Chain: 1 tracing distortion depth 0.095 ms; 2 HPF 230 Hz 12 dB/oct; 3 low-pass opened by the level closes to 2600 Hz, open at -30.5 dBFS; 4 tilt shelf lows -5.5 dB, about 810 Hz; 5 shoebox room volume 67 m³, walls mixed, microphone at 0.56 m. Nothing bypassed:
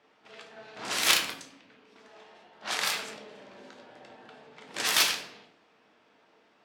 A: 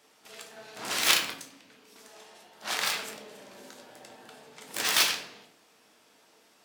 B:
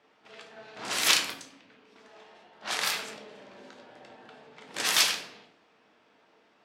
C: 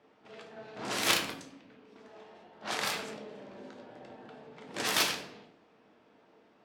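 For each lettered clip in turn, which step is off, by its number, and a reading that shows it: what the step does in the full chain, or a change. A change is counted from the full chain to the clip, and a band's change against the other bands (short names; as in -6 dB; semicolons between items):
3, momentary loudness spread change +3 LU; 1, crest factor change -1.5 dB; 4, 125 Hz band +7.5 dB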